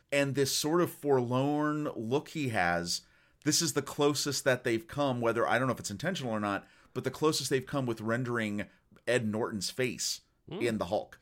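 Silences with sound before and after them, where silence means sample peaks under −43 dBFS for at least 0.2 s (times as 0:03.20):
0:02.99–0:03.42
0:06.61–0:06.96
0:08.65–0:08.96
0:10.17–0:10.49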